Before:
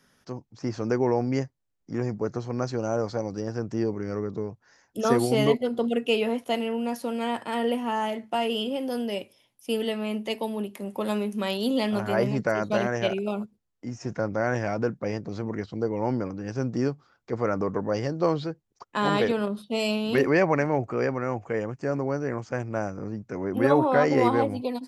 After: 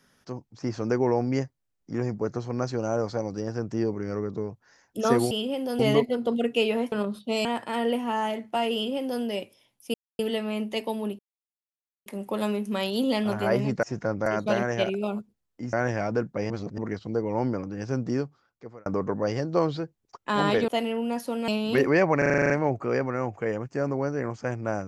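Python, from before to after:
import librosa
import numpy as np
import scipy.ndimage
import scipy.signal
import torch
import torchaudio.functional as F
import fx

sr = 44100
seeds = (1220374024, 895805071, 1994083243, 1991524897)

y = fx.edit(x, sr, fx.swap(start_s=6.44, length_s=0.8, other_s=19.35, other_length_s=0.53),
    fx.duplicate(start_s=8.53, length_s=0.48, to_s=5.31),
    fx.insert_silence(at_s=9.73, length_s=0.25),
    fx.insert_silence(at_s=10.73, length_s=0.87),
    fx.move(start_s=13.97, length_s=0.43, to_s=12.5),
    fx.reverse_span(start_s=15.17, length_s=0.28),
    fx.fade_out_span(start_s=16.7, length_s=0.83),
    fx.stutter(start_s=20.58, slice_s=0.04, count=9), tone=tone)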